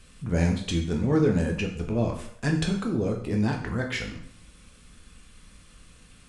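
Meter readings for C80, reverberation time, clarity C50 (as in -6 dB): 11.0 dB, 0.60 s, 7.5 dB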